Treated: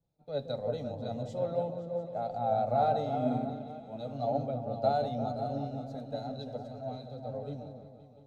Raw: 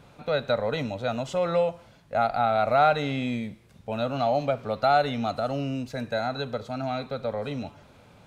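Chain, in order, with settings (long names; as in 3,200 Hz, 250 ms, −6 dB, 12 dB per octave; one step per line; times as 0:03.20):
high-shelf EQ 3,100 Hz −8 dB
notch filter 960 Hz, Q 16
on a send: echo whose low-pass opens from repeat to repeat 175 ms, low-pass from 400 Hz, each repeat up 2 octaves, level −3 dB
on the sum: flanger 0.51 Hz, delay 5.9 ms, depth 3.2 ms, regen +49%
flat-topped bell 1,800 Hz −13.5 dB
multiband upward and downward expander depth 70%
level −4 dB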